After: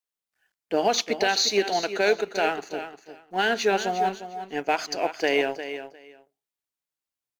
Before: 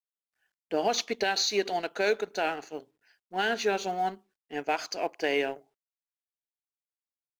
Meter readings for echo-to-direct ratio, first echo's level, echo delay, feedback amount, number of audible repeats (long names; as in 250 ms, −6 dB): −11.0 dB, −11.0 dB, 353 ms, 17%, 2